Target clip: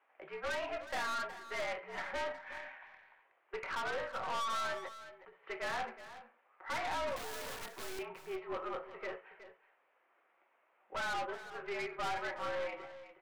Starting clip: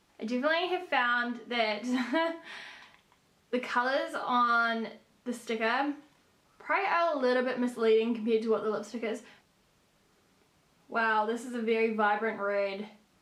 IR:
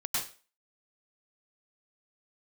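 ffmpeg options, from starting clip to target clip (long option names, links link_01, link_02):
-filter_complex "[0:a]highpass=frequency=580:width_type=q:width=0.5412,highpass=frequency=580:width_type=q:width=1.307,lowpass=frequency=2500:width_type=q:width=0.5176,lowpass=frequency=2500:width_type=q:width=0.7071,lowpass=frequency=2500:width_type=q:width=1.932,afreqshift=-62,aeval=exprs='(tanh(63.1*val(0)+0.45)-tanh(0.45))/63.1':channel_layout=same,asplit=3[link_01][link_02][link_03];[link_01]afade=type=out:start_time=4.88:duration=0.02[link_04];[link_02]acompressor=threshold=-56dB:ratio=10,afade=type=in:start_time=4.88:duration=0.02,afade=type=out:start_time=5.42:duration=0.02[link_05];[link_03]afade=type=in:start_time=5.42:duration=0.02[link_06];[link_04][link_05][link_06]amix=inputs=3:normalize=0,asettb=1/sr,asplit=3[link_07][link_08][link_09];[link_07]atrim=end=7.164[link_10];[link_08]atrim=start=7.16:end=7.99,asetpts=PTS-STARTPTS,afade=type=in:duration=0.004:curve=qsin,afade=type=out:start_time=0.826:duration=0.004:curve=qsin,aeval=exprs='(mod(100*val(0)+1,2)-1)/100':channel_layout=same[link_11];[link_09]atrim=start=7.986[link_12];[link_10][link_11]acrossfade=duration=0.004:curve1=hsin:curve2=qsin[link_13];[link_13][link_12]acrossfade=duration=0.004:curve1=qsin:curve2=hsin,asplit=2[link_14][link_15];[link_15]aecho=0:1:367:0.224[link_16];[link_14][link_16]amix=inputs=2:normalize=0,aeval=exprs='0.0282*(cos(1*acos(clip(val(0)/0.0282,-1,1)))-cos(1*PI/2))+0.00112*(cos(6*acos(clip(val(0)/0.0282,-1,1)))-cos(6*PI/2))+0.000224*(cos(7*acos(clip(val(0)/0.0282,-1,1)))-cos(7*PI/2))':channel_layout=same,volume=1dB"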